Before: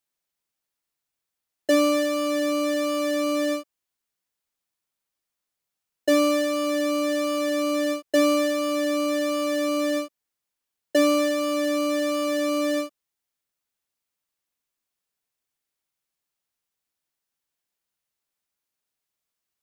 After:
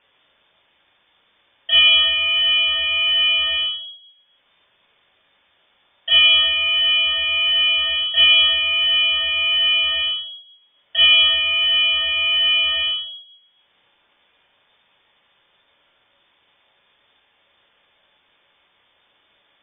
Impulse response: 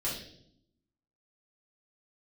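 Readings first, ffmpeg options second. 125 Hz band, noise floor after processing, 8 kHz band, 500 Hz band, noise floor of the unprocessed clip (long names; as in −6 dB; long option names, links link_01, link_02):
can't be measured, −63 dBFS, below −40 dB, −17.0 dB, −85 dBFS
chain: -filter_complex "[0:a]acompressor=mode=upward:threshold=-38dB:ratio=2.5[link_01];[1:a]atrim=start_sample=2205[link_02];[link_01][link_02]afir=irnorm=-1:irlink=0,lowpass=frequency=3100:width_type=q:width=0.5098,lowpass=frequency=3100:width_type=q:width=0.6013,lowpass=frequency=3100:width_type=q:width=0.9,lowpass=frequency=3100:width_type=q:width=2.563,afreqshift=-3600"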